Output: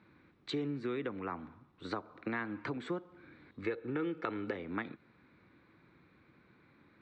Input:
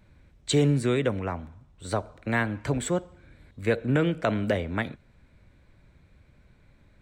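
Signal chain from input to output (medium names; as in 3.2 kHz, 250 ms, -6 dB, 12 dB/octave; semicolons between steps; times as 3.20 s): 3.63–4.56 s: comb 2.3 ms, depth 50%; compression 5:1, threshold -34 dBFS, peak gain reduction 15.5 dB; cabinet simulation 200–4100 Hz, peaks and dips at 320 Hz +6 dB, 610 Hz -9 dB, 1.2 kHz +6 dB, 3.1 kHz -6 dB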